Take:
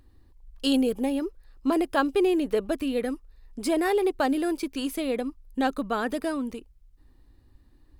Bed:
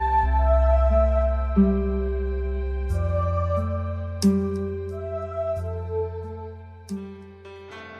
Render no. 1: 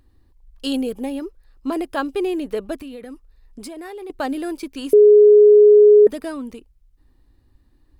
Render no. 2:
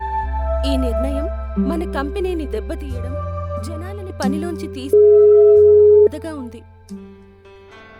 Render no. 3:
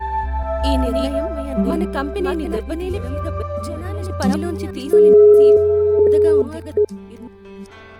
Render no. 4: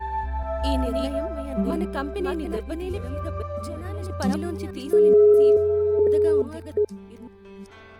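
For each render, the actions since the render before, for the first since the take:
0:02.78–0:04.10: downward compressor 12 to 1, threshold −31 dBFS; 0:04.93–0:06.07: beep over 418 Hz −6 dBFS
mix in bed −1.5 dB
delay that plays each chunk backwards 428 ms, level −4 dB
level −6 dB

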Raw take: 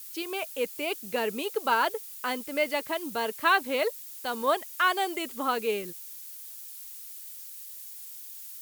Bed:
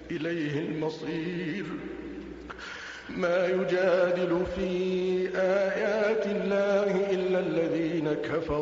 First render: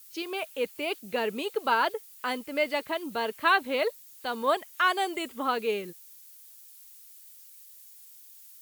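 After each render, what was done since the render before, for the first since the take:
noise reduction from a noise print 8 dB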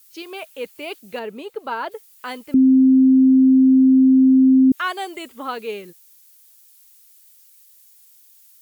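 0:01.19–0:01.92: high-shelf EQ 2,000 Hz −9 dB
0:02.54–0:04.72: beep over 262 Hz −9 dBFS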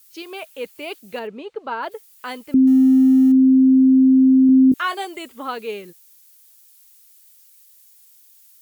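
0:01.27–0:01.83: high-frequency loss of the air 110 metres
0:02.67–0:03.32: mu-law and A-law mismatch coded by A
0:04.47–0:05.05: double-tracking delay 20 ms −8 dB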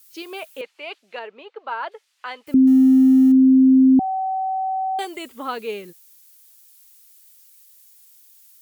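0:00.61–0:02.47: band-pass filter 630–3,800 Hz
0:03.99–0:04.99: beep over 761 Hz −20.5 dBFS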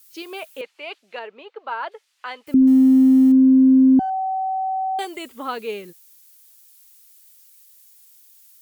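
0:02.61–0:04.10: windowed peak hold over 3 samples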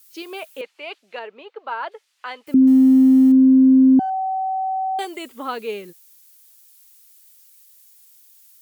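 high-pass filter 220 Hz 6 dB per octave
low-shelf EQ 330 Hz +5 dB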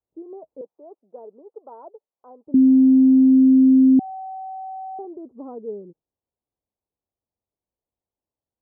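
Gaussian smoothing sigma 14 samples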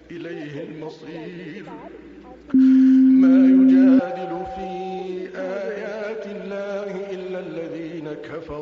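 mix in bed −3 dB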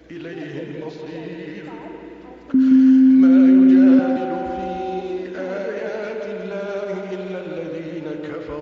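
single-tap delay 172 ms −7.5 dB
spring reverb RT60 3.2 s, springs 43 ms, chirp 75 ms, DRR 6.5 dB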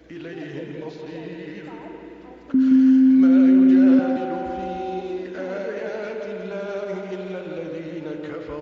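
level −2.5 dB

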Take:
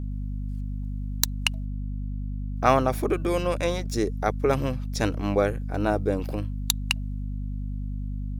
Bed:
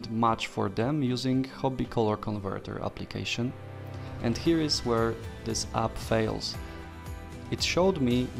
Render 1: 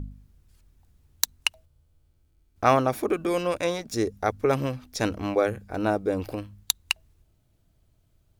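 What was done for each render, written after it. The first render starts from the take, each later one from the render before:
hum removal 50 Hz, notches 5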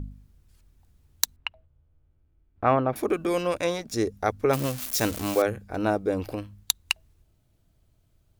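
0:01.36–0:02.96: high-frequency loss of the air 480 metres
0:04.53–0:05.42: spike at every zero crossing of −21 dBFS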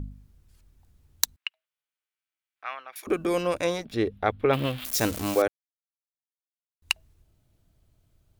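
0:01.36–0:03.07: Chebyshev high-pass filter 2,300 Hz
0:03.85–0:04.85: high shelf with overshoot 4,500 Hz −11 dB, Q 3
0:05.48–0:06.82: silence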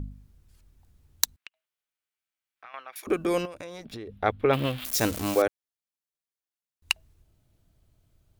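0:01.33–0:02.74: downward compressor, threshold −43 dBFS
0:03.45–0:04.09: downward compressor 12 to 1, threshold −35 dBFS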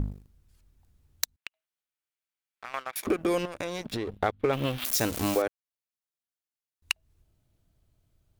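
downward compressor 4 to 1, threshold −32 dBFS, peak gain reduction 13.5 dB
leveller curve on the samples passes 2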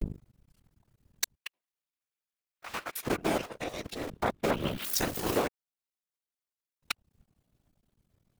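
sub-harmonics by changed cycles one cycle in 2, muted
random phases in short frames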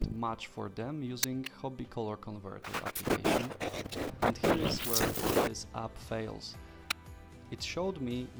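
mix in bed −10.5 dB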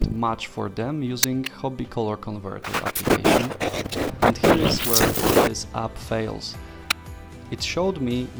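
level +11.5 dB

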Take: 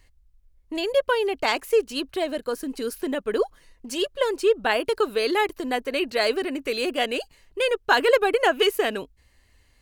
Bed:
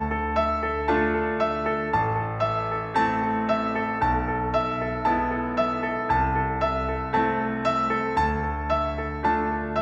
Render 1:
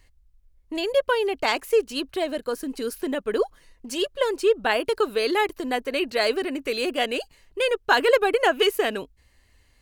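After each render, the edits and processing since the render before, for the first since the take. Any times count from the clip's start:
no processing that can be heard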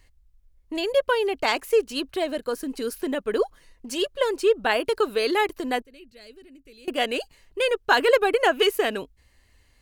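0:05.82–0:06.88: guitar amp tone stack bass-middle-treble 10-0-1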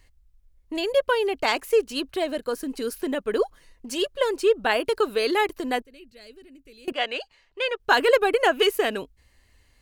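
0:06.92–0:07.80: three-way crossover with the lows and the highs turned down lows −13 dB, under 540 Hz, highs −21 dB, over 5,800 Hz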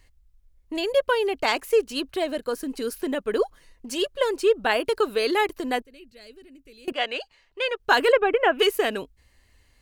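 0:08.12–0:08.59: Savitzky-Golay smoothing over 25 samples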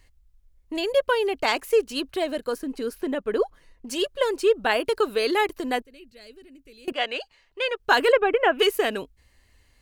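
0:02.58–0:03.87: high-shelf EQ 3,300 Hz −8 dB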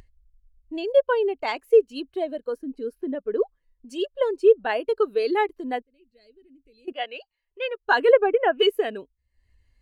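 upward compression, threshold −37 dBFS
every bin expanded away from the loudest bin 1.5 to 1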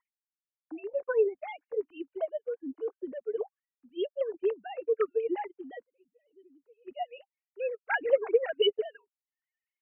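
three sine waves on the formant tracks
flanger whose copies keep moving one way rising 1.1 Hz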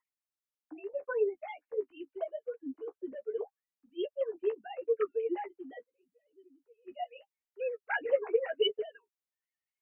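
flanger 0.79 Hz, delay 9.5 ms, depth 5.2 ms, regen −16%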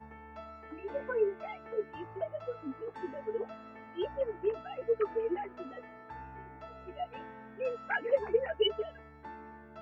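mix in bed −24 dB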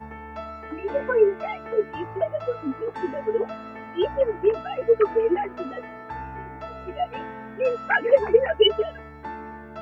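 level +11.5 dB

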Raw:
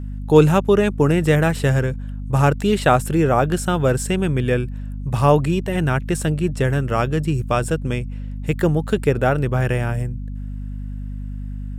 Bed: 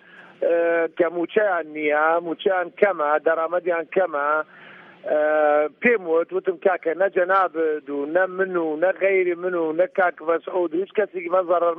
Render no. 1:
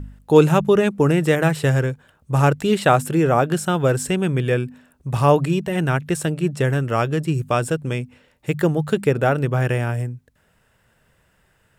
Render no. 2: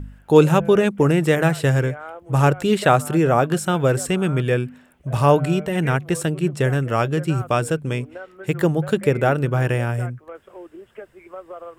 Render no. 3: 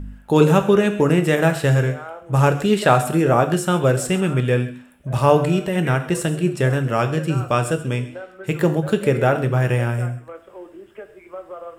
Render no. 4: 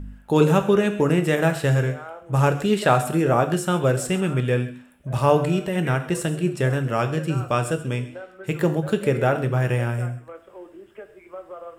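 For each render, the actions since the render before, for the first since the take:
hum removal 50 Hz, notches 5
mix in bed −17 dB
delay with a high-pass on its return 133 ms, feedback 33%, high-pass 1,800 Hz, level −16 dB; reverb whose tail is shaped and stops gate 180 ms falling, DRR 7 dB
level −3 dB

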